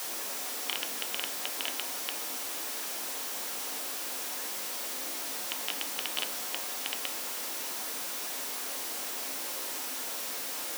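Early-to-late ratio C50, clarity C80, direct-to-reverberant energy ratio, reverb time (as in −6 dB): 10.5 dB, 13.5 dB, 2.0 dB, 0.50 s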